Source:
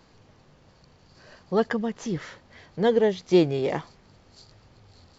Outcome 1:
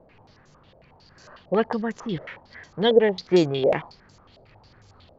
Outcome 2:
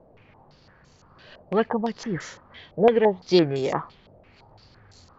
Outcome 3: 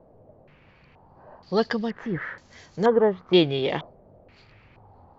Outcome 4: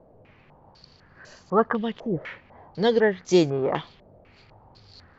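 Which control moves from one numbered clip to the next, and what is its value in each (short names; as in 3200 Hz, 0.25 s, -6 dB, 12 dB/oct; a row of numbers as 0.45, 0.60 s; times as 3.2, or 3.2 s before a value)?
stepped low-pass, rate: 11, 5.9, 2.1, 4 Hz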